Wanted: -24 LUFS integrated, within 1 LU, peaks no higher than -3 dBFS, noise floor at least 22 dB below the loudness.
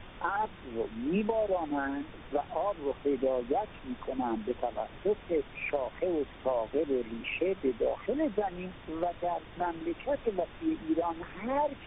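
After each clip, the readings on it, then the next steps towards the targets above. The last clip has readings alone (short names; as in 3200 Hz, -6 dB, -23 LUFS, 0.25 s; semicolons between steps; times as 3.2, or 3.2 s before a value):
noise floor -49 dBFS; noise floor target -55 dBFS; loudness -33.0 LUFS; peak -17.5 dBFS; loudness target -24.0 LUFS
-> noise print and reduce 6 dB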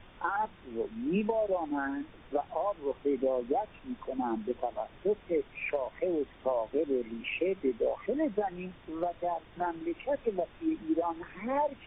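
noise floor -55 dBFS; loudness -33.0 LUFS; peak -18.5 dBFS; loudness target -24.0 LUFS
-> gain +9 dB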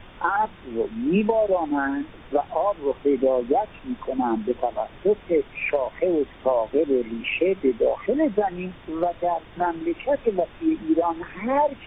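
loudness -24.0 LUFS; peak -9.5 dBFS; noise floor -46 dBFS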